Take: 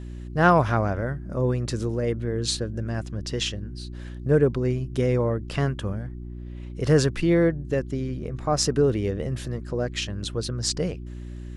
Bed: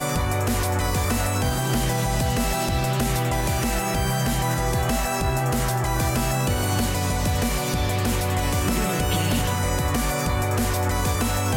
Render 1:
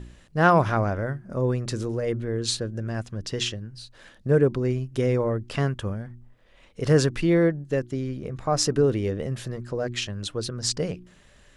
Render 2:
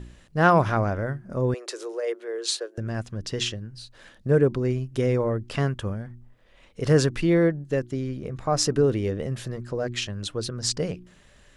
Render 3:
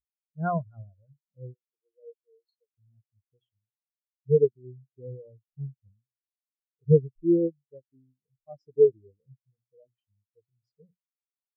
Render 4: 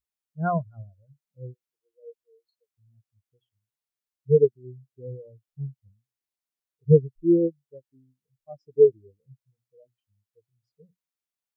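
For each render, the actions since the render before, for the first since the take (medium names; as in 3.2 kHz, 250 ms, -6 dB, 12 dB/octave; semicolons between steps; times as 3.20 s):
de-hum 60 Hz, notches 6
1.54–2.78 s: steep high-pass 370 Hz 48 dB/octave
spectral contrast expander 4:1
trim +2.5 dB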